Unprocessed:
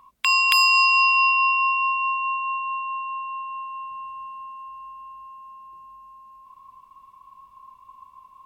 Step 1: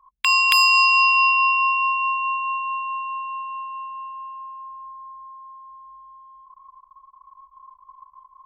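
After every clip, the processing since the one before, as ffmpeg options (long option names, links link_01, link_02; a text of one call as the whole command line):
ffmpeg -i in.wav -af "anlmdn=0.0398,volume=1.5dB" out.wav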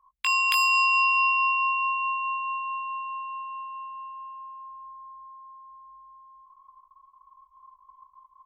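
ffmpeg -i in.wav -filter_complex "[0:a]asplit=2[link_01][link_02];[link_02]adelay=19,volume=-7.5dB[link_03];[link_01][link_03]amix=inputs=2:normalize=0,volume=-7dB" out.wav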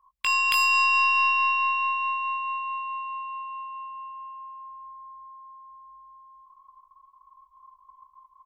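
ffmpeg -i in.wav -filter_complex "[0:a]bandreject=frequency=6400:width=27,aeval=exprs='0.355*(cos(1*acos(clip(val(0)/0.355,-1,1)))-cos(1*PI/2))+0.0158*(cos(4*acos(clip(val(0)/0.355,-1,1)))-cos(4*PI/2))+0.00447*(cos(5*acos(clip(val(0)/0.355,-1,1)))-cos(5*PI/2))+0.00282*(cos(7*acos(clip(val(0)/0.355,-1,1)))-cos(7*PI/2))':channel_layout=same,asplit=2[link_01][link_02];[link_02]adelay=210,highpass=300,lowpass=3400,asoftclip=type=hard:threshold=-17dB,volume=-20dB[link_03];[link_01][link_03]amix=inputs=2:normalize=0" out.wav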